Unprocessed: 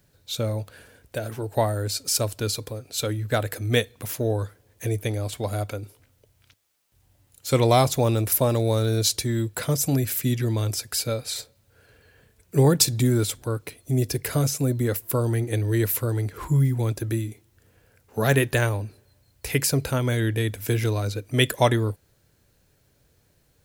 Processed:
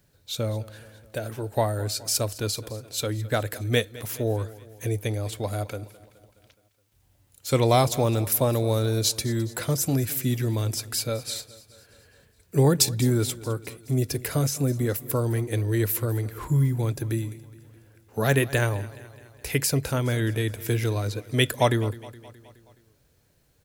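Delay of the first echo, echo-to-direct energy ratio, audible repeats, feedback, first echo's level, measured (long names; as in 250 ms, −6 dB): 210 ms, −17.5 dB, 4, 58%, −19.0 dB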